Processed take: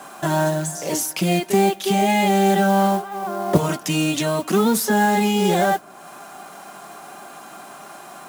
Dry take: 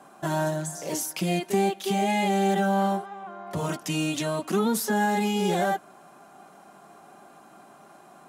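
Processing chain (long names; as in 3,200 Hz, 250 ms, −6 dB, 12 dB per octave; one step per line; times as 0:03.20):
0:03.13–0:03.56: parametric band 340 Hz +7 dB → +15 dB 2.7 octaves
noise that follows the level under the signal 21 dB
one half of a high-frequency compander encoder only
level +6.5 dB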